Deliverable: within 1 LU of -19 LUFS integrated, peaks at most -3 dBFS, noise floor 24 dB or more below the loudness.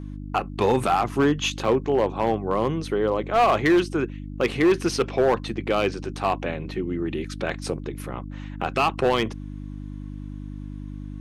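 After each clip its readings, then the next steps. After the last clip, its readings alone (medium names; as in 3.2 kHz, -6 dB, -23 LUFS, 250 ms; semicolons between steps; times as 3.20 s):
clipped samples 1.2%; clipping level -13.5 dBFS; hum 50 Hz; highest harmonic 300 Hz; hum level -33 dBFS; loudness -24.0 LUFS; peak level -13.5 dBFS; loudness target -19.0 LUFS
-> clip repair -13.5 dBFS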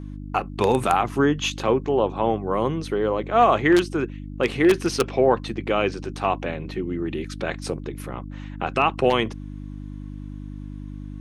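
clipped samples 0.0%; hum 50 Hz; highest harmonic 300 Hz; hum level -32 dBFS
-> de-hum 50 Hz, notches 6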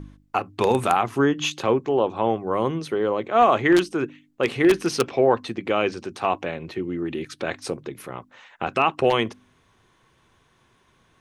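hum not found; loudness -23.0 LUFS; peak level -4.5 dBFS; loudness target -19.0 LUFS
-> trim +4 dB; peak limiter -3 dBFS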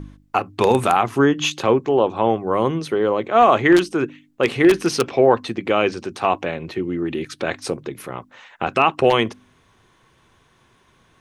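loudness -19.0 LUFS; peak level -3.0 dBFS; noise floor -58 dBFS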